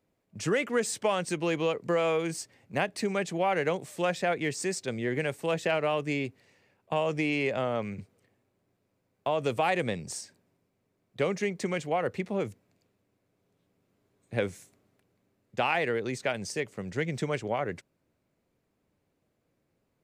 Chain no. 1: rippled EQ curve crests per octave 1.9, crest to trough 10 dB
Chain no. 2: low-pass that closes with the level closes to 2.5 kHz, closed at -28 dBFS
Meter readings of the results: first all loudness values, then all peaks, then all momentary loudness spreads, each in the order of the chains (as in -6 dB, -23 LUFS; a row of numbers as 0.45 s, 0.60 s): -29.0 LUFS, -31.0 LUFS; -11.5 dBFS, -14.5 dBFS; 10 LU, 8 LU